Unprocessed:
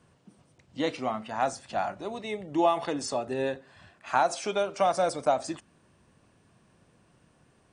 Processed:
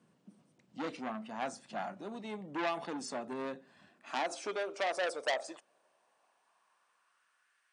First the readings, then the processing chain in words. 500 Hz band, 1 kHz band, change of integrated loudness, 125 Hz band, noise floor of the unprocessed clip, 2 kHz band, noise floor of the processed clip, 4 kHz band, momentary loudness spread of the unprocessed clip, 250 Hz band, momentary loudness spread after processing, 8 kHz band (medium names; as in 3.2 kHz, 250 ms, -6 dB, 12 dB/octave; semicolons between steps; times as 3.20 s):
-9.5 dB, -10.5 dB, -9.0 dB, -12.0 dB, -64 dBFS, -2.5 dB, -75 dBFS, -4.5 dB, 11 LU, -8.5 dB, 10 LU, -8.5 dB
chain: high-pass sweep 200 Hz -> 1.6 kHz, 3.65–7.61 s; transformer saturation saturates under 2.8 kHz; trim -8.5 dB